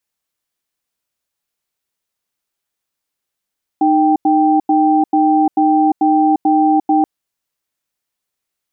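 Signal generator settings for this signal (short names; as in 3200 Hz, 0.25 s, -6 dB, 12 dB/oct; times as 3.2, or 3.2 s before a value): cadence 308 Hz, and 784 Hz, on 0.35 s, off 0.09 s, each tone -12 dBFS 3.23 s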